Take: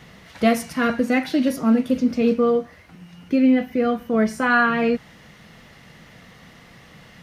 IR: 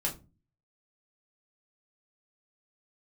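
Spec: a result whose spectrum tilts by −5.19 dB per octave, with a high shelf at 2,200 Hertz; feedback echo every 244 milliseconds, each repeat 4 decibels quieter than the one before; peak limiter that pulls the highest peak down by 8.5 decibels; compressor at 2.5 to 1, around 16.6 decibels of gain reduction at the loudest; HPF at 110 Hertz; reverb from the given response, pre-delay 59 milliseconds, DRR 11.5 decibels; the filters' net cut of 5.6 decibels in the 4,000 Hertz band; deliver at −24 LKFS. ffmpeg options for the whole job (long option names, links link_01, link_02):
-filter_complex "[0:a]highpass=110,highshelf=frequency=2200:gain=-5,equalizer=frequency=4000:width_type=o:gain=-3,acompressor=threshold=-39dB:ratio=2.5,alimiter=level_in=7.5dB:limit=-24dB:level=0:latency=1,volume=-7.5dB,aecho=1:1:244|488|732|976|1220|1464|1708|1952|2196:0.631|0.398|0.25|0.158|0.0994|0.0626|0.0394|0.0249|0.0157,asplit=2[link_01][link_02];[1:a]atrim=start_sample=2205,adelay=59[link_03];[link_02][link_03]afir=irnorm=-1:irlink=0,volume=-16dB[link_04];[link_01][link_04]amix=inputs=2:normalize=0,volume=15.5dB"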